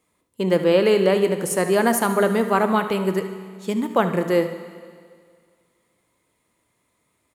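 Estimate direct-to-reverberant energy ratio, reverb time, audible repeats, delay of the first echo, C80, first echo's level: 8.0 dB, 2.0 s, 1, 74 ms, 11.5 dB, −13.5 dB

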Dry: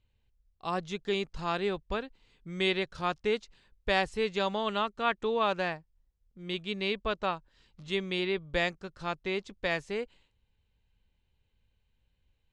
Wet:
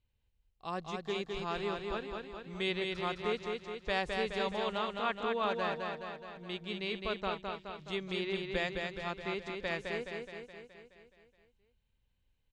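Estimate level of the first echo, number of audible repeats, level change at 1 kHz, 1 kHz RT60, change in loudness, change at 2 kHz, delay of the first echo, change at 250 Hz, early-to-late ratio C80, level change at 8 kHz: −4.0 dB, 7, −4.0 dB, no reverb audible, −4.5 dB, −4.0 dB, 211 ms, −4.0 dB, no reverb audible, can't be measured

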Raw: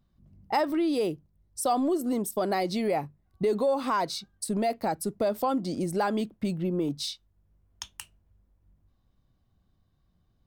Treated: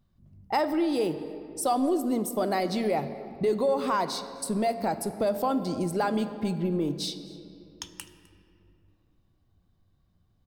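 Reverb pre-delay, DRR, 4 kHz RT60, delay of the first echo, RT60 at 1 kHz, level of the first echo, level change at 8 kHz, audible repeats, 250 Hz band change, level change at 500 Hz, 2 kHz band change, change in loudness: 3 ms, 10.0 dB, 1.6 s, 256 ms, 2.4 s, −22.5 dB, 0.0 dB, 1, +1.0 dB, +0.5 dB, +0.5 dB, +0.5 dB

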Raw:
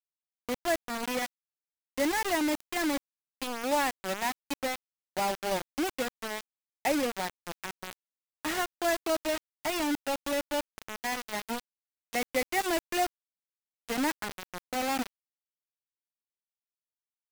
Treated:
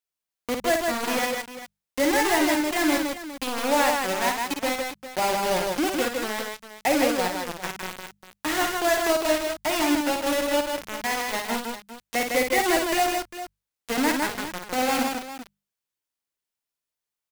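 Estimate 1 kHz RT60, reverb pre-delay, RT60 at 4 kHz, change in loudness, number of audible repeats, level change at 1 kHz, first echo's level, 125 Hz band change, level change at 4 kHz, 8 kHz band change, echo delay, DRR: no reverb audible, no reverb audible, no reverb audible, +7.5 dB, 4, +7.5 dB, −5.5 dB, +7.0 dB, +7.5 dB, +7.5 dB, 55 ms, no reverb audible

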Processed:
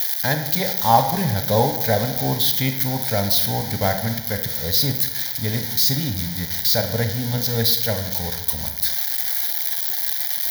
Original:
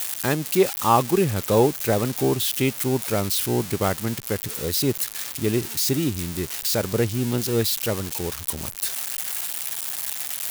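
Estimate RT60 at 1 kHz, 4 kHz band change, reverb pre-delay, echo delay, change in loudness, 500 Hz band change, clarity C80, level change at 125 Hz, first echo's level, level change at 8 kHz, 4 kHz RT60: 0.90 s, +6.0 dB, 25 ms, no echo audible, +3.5 dB, −2.0 dB, 10.5 dB, +3.0 dB, no echo audible, 0.0 dB, 0.65 s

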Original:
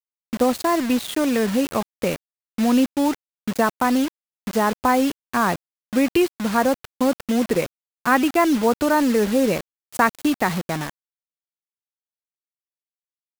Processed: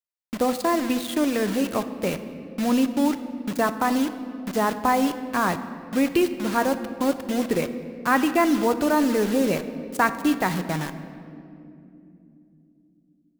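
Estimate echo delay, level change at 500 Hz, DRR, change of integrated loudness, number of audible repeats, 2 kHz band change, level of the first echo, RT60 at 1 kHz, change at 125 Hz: no echo audible, −3.0 dB, 9.0 dB, −2.5 dB, no echo audible, −2.5 dB, no echo audible, 2.2 s, −1.5 dB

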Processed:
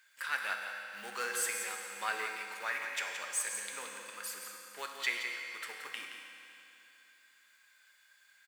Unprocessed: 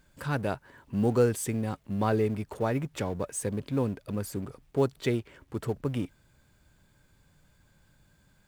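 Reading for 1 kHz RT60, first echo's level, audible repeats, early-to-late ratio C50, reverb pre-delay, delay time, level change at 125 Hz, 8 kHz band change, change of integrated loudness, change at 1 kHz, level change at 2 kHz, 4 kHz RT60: 3.0 s, −8.5 dB, 1, 1.5 dB, 4 ms, 173 ms, below −40 dB, +3.0 dB, −6.5 dB, −4.5 dB, +7.0 dB, 2.8 s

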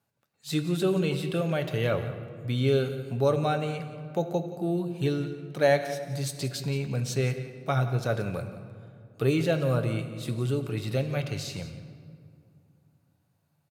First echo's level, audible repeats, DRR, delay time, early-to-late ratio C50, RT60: −15.0 dB, 1, 6.0 dB, 175 ms, 9.5 dB, 2.3 s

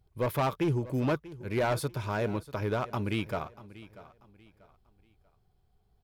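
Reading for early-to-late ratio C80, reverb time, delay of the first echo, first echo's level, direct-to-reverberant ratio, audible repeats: no reverb audible, no reverb audible, 639 ms, −17.5 dB, no reverb audible, 2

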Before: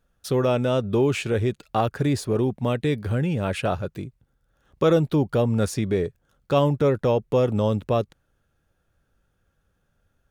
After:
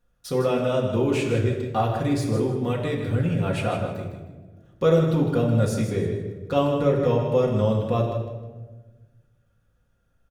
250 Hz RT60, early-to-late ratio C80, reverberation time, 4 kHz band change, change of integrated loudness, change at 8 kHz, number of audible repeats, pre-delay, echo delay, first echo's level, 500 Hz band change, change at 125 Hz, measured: 1.8 s, 5.0 dB, 1.3 s, −1.5 dB, 0.0 dB, −2.0 dB, 2, 4 ms, 156 ms, −8.0 dB, 0.0 dB, +1.0 dB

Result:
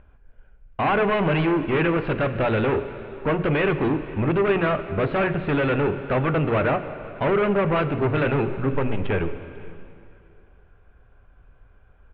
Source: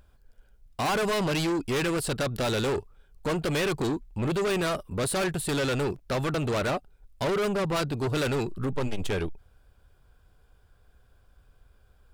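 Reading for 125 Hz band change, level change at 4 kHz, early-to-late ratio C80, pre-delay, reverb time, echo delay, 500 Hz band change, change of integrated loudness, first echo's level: +6.0 dB, −4.5 dB, 11.5 dB, 6 ms, 2.6 s, 495 ms, +6.0 dB, +5.5 dB, −22.5 dB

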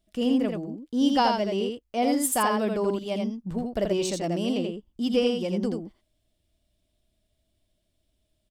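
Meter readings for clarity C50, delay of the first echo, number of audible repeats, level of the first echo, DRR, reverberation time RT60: no reverb audible, 83 ms, 1, −4.0 dB, no reverb audible, no reverb audible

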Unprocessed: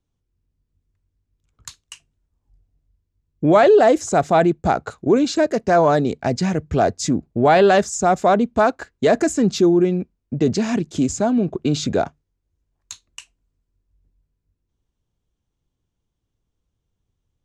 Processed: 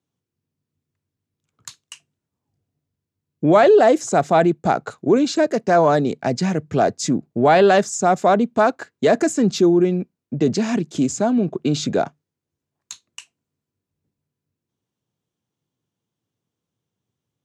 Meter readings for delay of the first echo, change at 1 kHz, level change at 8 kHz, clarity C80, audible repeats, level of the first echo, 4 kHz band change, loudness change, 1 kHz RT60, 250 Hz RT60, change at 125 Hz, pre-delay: no echo audible, 0.0 dB, 0.0 dB, no reverb audible, no echo audible, no echo audible, 0.0 dB, 0.0 dB, no reverb audible, no reverb audible, −1.0 dB, no reverb audible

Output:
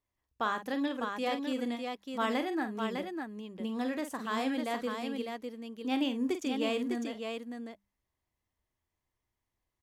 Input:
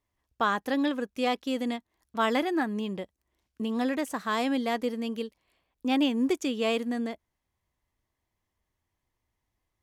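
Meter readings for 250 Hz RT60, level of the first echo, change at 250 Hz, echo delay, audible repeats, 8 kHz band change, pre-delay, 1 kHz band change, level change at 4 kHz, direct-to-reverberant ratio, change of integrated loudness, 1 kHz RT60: no reverb audible, −9.5 dB, −4.5 dB, 46 ms, 2, −4.5 dB, no reverb audible, −4.5 dB, −4.5 dB, no reverb audible, −5.0 dB, no reverb audible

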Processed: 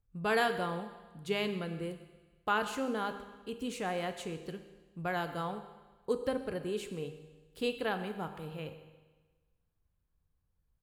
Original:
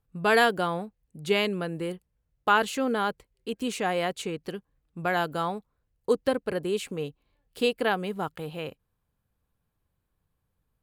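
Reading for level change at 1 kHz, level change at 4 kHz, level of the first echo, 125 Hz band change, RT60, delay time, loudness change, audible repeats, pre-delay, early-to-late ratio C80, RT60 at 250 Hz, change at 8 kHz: −8.0 dB, −8.5 dB, −18.5 dB, −5.0 dB, 1.3 s, 131 ms, −8.0 dB, 1, 8 ms, 11.0 dB, 1.3 s, −8.5 dB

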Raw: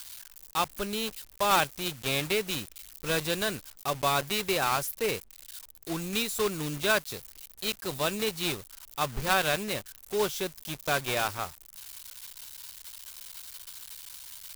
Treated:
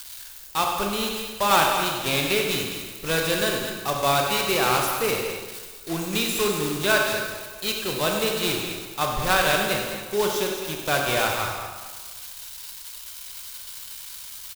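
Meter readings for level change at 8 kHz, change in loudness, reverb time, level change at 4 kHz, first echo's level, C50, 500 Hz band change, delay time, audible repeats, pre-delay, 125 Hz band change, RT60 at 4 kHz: +6.0 dB, +6.0 dB, 1.4 s, +6.5 dB, −9.5 dB, 1.5 dB, +6.5 dB, 97 ms, 2, 27 ms, +5.0 dB, 1.3 s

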